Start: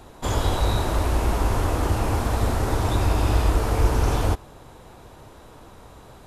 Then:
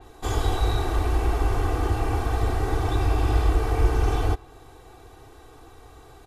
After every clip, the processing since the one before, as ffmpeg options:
-af "aecho=1:1:2.6:0.79,adynamicequalizer=threshold=0.00501:dfrequency=4400:dqfactor=0.7:tfrequency=4400:tqfactor=0.7:attack=5:release=100:ratio=0.375:range=3:mode=cutabove:tftype=highshelf,volume=0.596"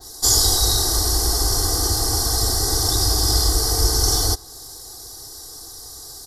-af "aexciter=amount=12.4:drive=6.4:freq=4200,superequalizer=12b=0.282:14b=2.51"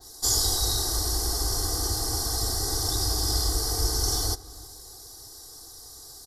-filter_complex "[0:a]asplit=2[s0][s1];[s1]adelay=317,lowpass=f=2000:p=1,volume=0.126,asplit=2[s2][s3];[s3]adelay=317,lowpass=f=2000:p=1,volume=0.41,asplit=2[s4][s5];[s5]adelay=317,lowpass=f=2000:p=1,volume=0.41[s6];[s0][s2][s4][s6]amix=inputs=4:normalize=0,volume=0.422"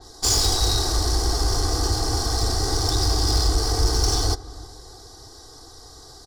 -af "adynamicsmooth=sensitivity=2:basefreq=4300,aeval=exprs='0.266*sin(PI/2*1.58*val(0)/0.266)':c=same"

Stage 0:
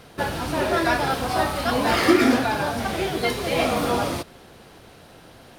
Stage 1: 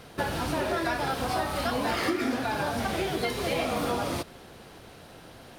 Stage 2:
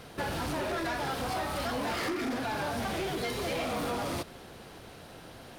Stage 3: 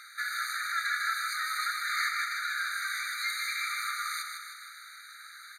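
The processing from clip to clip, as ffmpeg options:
-af "acompressor=threshold=0.0631:ratio=6,volume=0.891"
-af "asoftclip=type=tanh:threshold=0.0376"
-af "aecho=1:1:155|310|465|620|775|930|1085:0.501|0.286|0.163|0.0928|0.0529|0.0302|0.0172,aresample=32000,aresample=44100,afftfilt=real='re*eq(mod(floor(b*sr/1024/1200),2),1)':imag='im*eq(mod(floor(b*sr/1024/1200),2),1)':win_size=1024:overlap=0.75,volume=2.11"

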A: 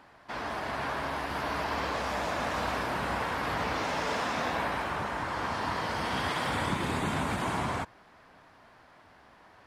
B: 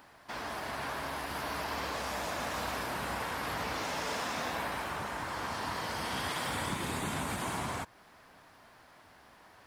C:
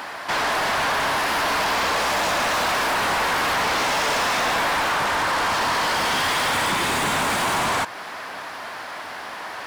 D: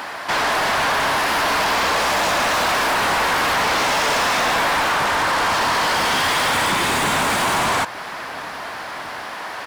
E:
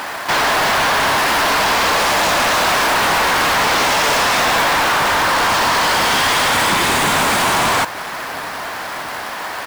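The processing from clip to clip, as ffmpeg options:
-filter_complex "[0:a]asplit=2[s0][s1];[s1]acompressor=threshold=0.01:ratio=6,volume=0.794[s2];[s0][s2]amix=inputs=2:normalize=0,aemphasis=mode=production:type=50kf,volume=0.447"
-filter_complex "[0:a]asplit=2[s0][s1];[s1]highpass=f=720:p=1,volume=20,asoftclip=type=tanh:threshold=0.0794[s2];[s0][s2]amix=inputs=2:normalize=0,lowpass=f=4700:p=1,volume=0.501,volume=2.24"
-filter_complex "[0:a]asplit=2[s0][s1];[s1]adelay=1399,volume=0.112,highshelf=f=4000:g=-31.5[s2];[s0][s2]amix=inputs=2:normalize=0,volume=1.41"
-af "acrusher=bits=2:mode=log:mix=0:aa=0.000001,volume=1.58"

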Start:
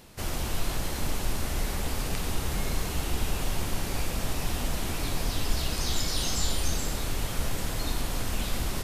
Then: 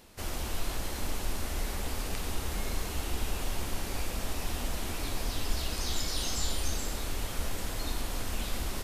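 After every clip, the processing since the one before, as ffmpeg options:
-af "equalizer=f=140:w=3:g=-10,volume=0.668"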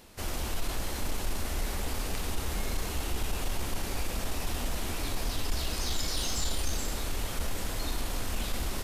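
-af "asoftclip=type=tanh:threshold=0.0794,volume=1.26"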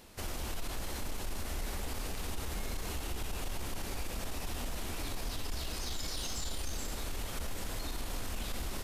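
-af "alimiter=level_in=1.5:limit=0.0631:level=0:latency=1:release=93,volume=0.668,volume=0.841"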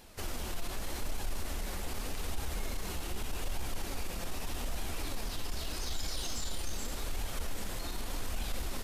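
-af "flanger=delay=1.2:depth=4.6:regen=68:speed=0.83:shape=sinusoidal,volume=1.68"

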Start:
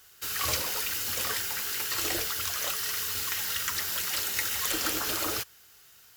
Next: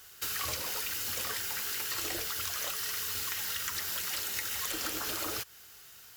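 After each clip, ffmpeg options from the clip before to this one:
-af "acompressor=threshold=0.0178:ratio=6,volume=1.41"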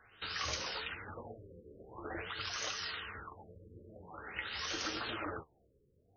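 -af "flanger=delay=8.4:depth=6.7:regen=47:speed=0.79:shape=sinusoidal,afftfilt=real='re*lt(b*sr/1024,550*pow(6700/550,0.5+0.5*sin(2*PI*0.47*pts/sr)))':imag='im*lt(b*sr/1024,550*pow(6700/550,0.5+0.5*sin(2*PI*0.47*pts/sr)))':win_size=1024:overlap=0.75,volume=1.41"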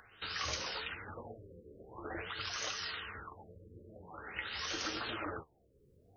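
-af "acompressor=mode=upward:threshold=0.00141:ratio=2.5"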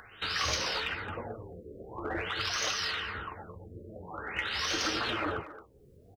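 -filter_complex "[0:a]asplit=2[s0][s1];[s1]asoftclip=type=hard:threshold=0.0119,volume=0.447[s2];[s0][s2]amix=inputs=2:normalize=0,asplit=2[s3][s4];[s4]adelay=220,highpass=300,lowpass=3400,asoftclip=type=hard:threshold=0.0282,volume=0.224[s5];[s3][s5]amix=inputs=2:normalize=0,volume=1.78"

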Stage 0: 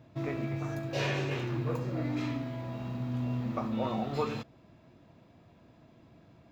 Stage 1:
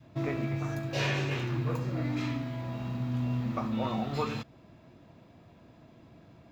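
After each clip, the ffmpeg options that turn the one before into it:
-af "adynamicequalizer=threshold=0.00631:dfrequency=480:dqfactor=0.82:tfrequency=480:tqfactor=0.82:attack=5:release=100:ratio=0.375:range=2.5:mode=cutabove:tftype=bell,volume=1.41"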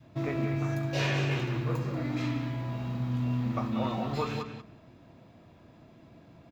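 -filter_complex "[0:a]asplit=2[s0][s1];[s1]adelay=187,lowpass=f=3400:p=1,volume=0.447,asplit=2[s2][s3];[s3]adelay=187,lowpass=f=3400:p=1,volume=0.15,asplit=2[s4][s5];[s5]adelay=187,lowpass=f=3400:p=1,volume=0.15[s6];[s0][s2][s4][s6]amix=inputs=4:normalize=0"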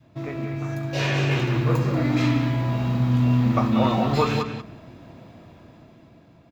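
-af "dynaudnorm=f=280:g=9:m=3.35"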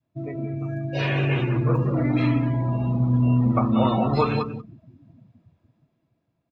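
-af "afftdn=nr=23:nf=-31"

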